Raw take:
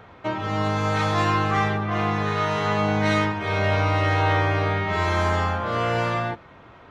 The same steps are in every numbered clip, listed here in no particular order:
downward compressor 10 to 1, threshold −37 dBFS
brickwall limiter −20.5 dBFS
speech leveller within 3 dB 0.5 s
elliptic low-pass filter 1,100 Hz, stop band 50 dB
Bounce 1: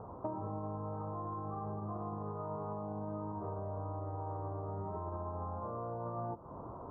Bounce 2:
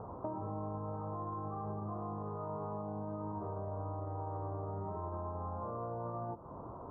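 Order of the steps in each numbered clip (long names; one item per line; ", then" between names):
elliptic low-pass filter, then brickwall limiter, then downward compressor, then speech leveller
speech leveller, then brickwall limiter, then elliptic low-pass filter, then downward compressor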